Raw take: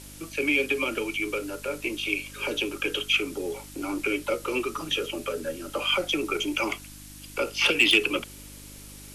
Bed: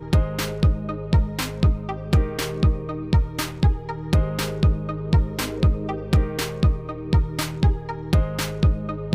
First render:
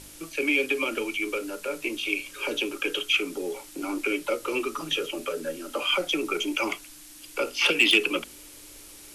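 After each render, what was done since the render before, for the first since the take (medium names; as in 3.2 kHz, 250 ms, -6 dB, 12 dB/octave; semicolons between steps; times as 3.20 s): de-hum 50 Hz, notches 5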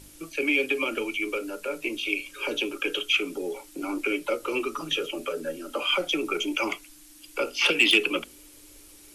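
noise reduction 6 dB, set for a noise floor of -47 dBFS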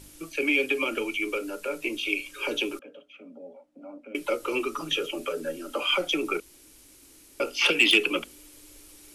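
2.79–4.15 s: two resonant band-passes 370 Hz, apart 1.3 oct; 6.40–7.40 s: room tone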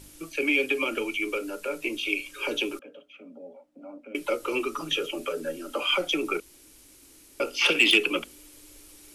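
7.48–7.91 s: flutter echo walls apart 10.2 m, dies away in 0.25 s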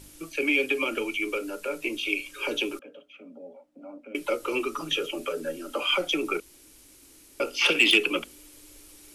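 no audible change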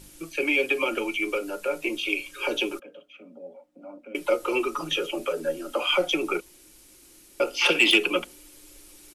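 dynamic bell 760 Hz, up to +5 dB, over -43 dBFS, Q 1.2; comb 5.6 ms, depth 37%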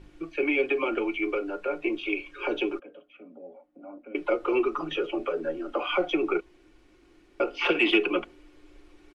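low-pass 2 kHz 12 dB/octave; comb 2.7 ms, depth 35%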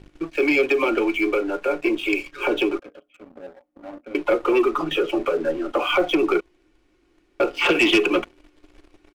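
waveshaping leveller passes 2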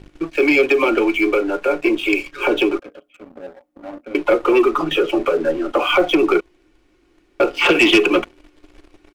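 trim +4.5 dB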